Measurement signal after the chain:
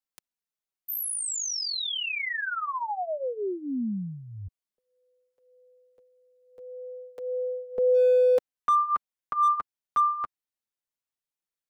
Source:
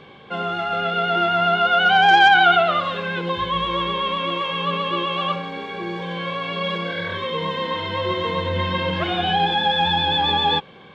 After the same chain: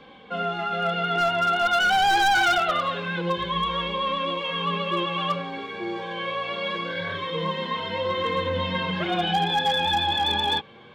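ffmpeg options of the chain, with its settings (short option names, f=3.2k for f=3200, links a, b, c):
-filter_complex "[0:a]flanger=delay=3.8:depth=5.2:regen=-5:speed=0.24:shape=sinusoidal,acrossover=split=270[a][b];[b]volume=17.5dB,asoftclip=hard,volume=-17.5dB[c];[a][c]amix=inputs=2:normalize=0"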